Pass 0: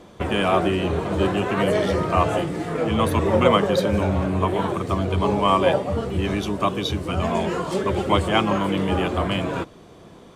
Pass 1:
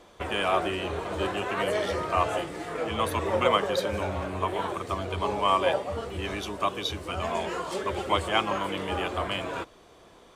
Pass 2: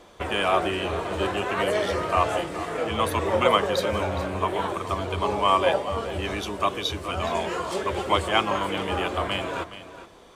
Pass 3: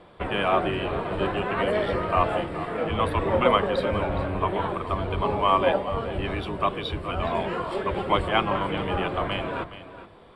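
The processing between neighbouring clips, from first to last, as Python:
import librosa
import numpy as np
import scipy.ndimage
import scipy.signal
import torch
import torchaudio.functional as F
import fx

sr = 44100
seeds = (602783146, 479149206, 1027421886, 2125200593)

y1 = fx.peak_eq(x, sr, hz=160.0, db=-13.0, octaves=2.2)
y1 = y1 * librosa.db_to_amplitude(-3.0)
y2 = y1 + 10.0 ** (-13.5 / 20.0) * np.pad(y1, (int(418 * sr / 1000.0), 0))[:len(y1)]
y2 = y2 * librosa.db_to_amplitude(3.0)
y3 = fx.octave_divider(y2, sr, octaves=1, level_db=-2.0)
y3 = scipy.signal.lfilter(np.full(7, 1.0 / 7), 1.0, y3)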